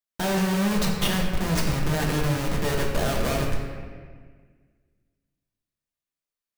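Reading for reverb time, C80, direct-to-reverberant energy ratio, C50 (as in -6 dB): 1.7 s, 4.0 dB, -2.0 dB, 2.0 dB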